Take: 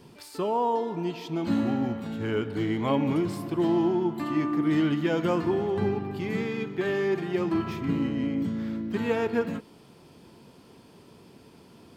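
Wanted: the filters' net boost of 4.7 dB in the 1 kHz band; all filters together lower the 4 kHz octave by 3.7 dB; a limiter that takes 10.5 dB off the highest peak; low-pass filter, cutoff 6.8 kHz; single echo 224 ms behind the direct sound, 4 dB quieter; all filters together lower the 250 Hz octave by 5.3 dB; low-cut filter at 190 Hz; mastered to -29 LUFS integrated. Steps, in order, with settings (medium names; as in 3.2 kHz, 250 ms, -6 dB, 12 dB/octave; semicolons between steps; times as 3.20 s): high-pass 190 Hz; low-pass 6.8 kHz; peaking EQ 250 Hz -6.5 dB; peaking EQ 1 kHz +6 dB; peaking EQ 4 kHz -5.5 dB; peak limiter -23.5 dBFS; delay 224 ms -4 dB; trim +3 dB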